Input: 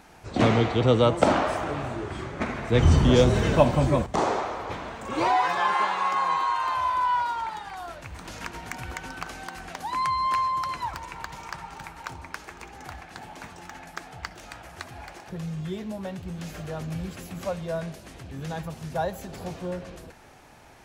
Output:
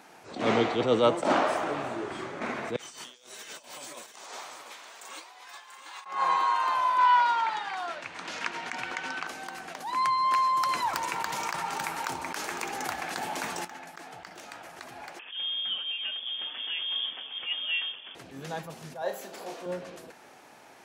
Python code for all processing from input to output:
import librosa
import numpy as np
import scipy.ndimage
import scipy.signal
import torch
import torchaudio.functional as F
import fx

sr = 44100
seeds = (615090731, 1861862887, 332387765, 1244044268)

y = fx.chain(x, sr, fx.differentiator(),
    fx.over_compress(threshold_db=-44.0, ratio=-0.5),
    fx.echo_single(ms=688, db=-9.0), at=(2.76, 6.06))
y = fx.chain(y, sr, fx.bandpass_edges(low_hz=110.0, high_hz=7700.0),
    fx.peak_eq(hz=2400.0, db=7.0, octaves=2.5), at=(6.98, 9.27))
y = fx.chain(y, sr, fx.high_shelf(hz=6300.0, db=7.0),
    fx.env_flatten(amount_pct=50), at=(10.36, 13.65))
y = fx.chain(y, sr, fx.peak_eq(hz=1400.0, db=-3.5, octaves=0.3),
    fx.freq_invert(carrier_hz=3400), at=(15.19, 18.15))
y = fx.chain(y, sr, fx.highpass(hz=320.0, slope=12),
    fx.room_flutter(wall_m=6.2, rt60_s=0.25), at=(19.02, 19.66))
y = scipy.signal.sosfilt(scipy.signal.butter(2, 250.0, 'highpass', fs=sr, output='sos'), y)
y = fx.attack_slew(y, sr, db_per_s=130.0)